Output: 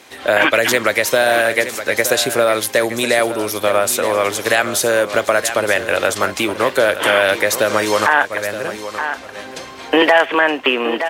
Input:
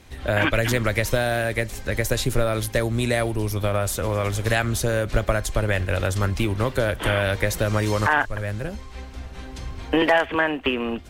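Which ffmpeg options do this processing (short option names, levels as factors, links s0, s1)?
-filter_complex "[0:a]highpass=390,asplit=2[s0][s1];[s1]aecho=0:1:920:0.251[s2];[s0][s2]amix=inputs=2:normalize=0,alimiter=level_in=3.55:limit=0.891:release=50:level=0:latency=1,volume=0.891"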